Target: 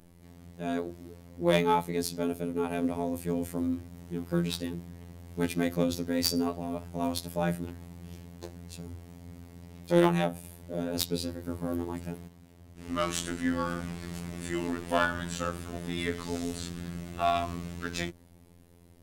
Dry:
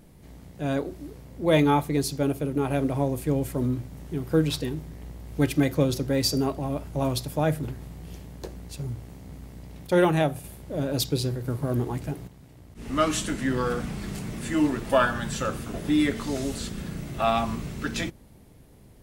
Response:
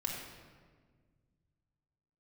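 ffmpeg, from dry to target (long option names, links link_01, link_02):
-af "afftfilt=real='hypot(re,im)*cos(PI*b)':imag='0':win_size=2048:overlap=0.75,aeval=exprs='0.562*(cos(1*acos(clip(val(0)/0.562,-1,1)))-cos(1*PI/2))+0.224*(cos(2*acos(clip(val(0)/0.562,-1,1)))-cos(2*PI/2))+0.0562*(cos(4*acos(clip(val(0)/0.562,-1,1)))-cos(4*PI/2))':channel_layout=same,volume=-1dB"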